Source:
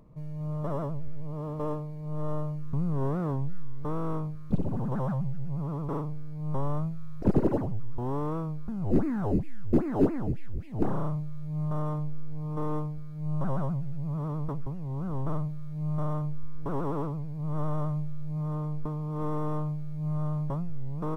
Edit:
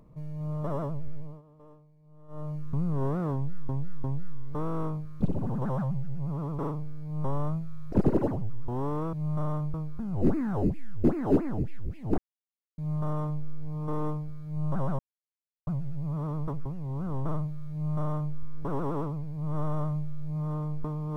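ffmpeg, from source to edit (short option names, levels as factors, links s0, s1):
-filter_complex "[0:a]asplit=10[s0][s1][s2][s3][s4][s5][s6][s7][s8][s9];[s0]atrim=end=1.42,asetpts=PTS-STARTPTS,afade=t=out:st=1.15:d=0.27:silence=0.0841395[s10];[s1]atrim=start=1.42:end=2.28,asetpts=PTS-STARTPTS,volume=0.0841[s11];[s2]atrim=start=2.28:end=3.692,asetpts=PTS-STARTPTS,afade=t=in:d=0.27:silence=0.0841395[s12];[s3]atrim=start=3.338:end=3.692[s13];[s4]atrim=start=3.338:end=8.432[s14];[s5]atrim=start=15.738:end=16.352[s15];[s6]atrim=start=8.428:end=10.87,asetpts=PTS-STARTPTS,afade=t=out:st=2.438:d=0.004:c=hsin[s16];[s7]atrim=start=10.87:end=11.47,asetpts=PTS-STARTPTS,volume=0[s17];[s8]atrim=start=11.47:end=13.68,asetpts=PTS-STARTPTS,afade=t=in:d=0.004:c=hsin,afade=t=out:st=2.206:d=0.004:c=hsin,apad=pad_dur=0.68[s18];[s9]atrim=start=13.68,asetpts=PTS-STARTPTS,afade=t=in:d=0.004:c=hsin[s19];[s10][s11][s12]concat=n=3:v=0:a=1[s20];[s20][s13]acrossfade=d=0.004:c1=hsin:c2=hsin[s21];[s21][s14]acrossfade=d=0.004:c1=hsin:c2=hsin[s22];[s22][s15]acrossfade=d=0.004:c1=hsin:c2=hsin[s23];[s16][s17][s18][s19]concat=n=4:v=0:a=1[s24];[s23][s24]acrossfade=d=0.004:c1=hsin:c2=hsin"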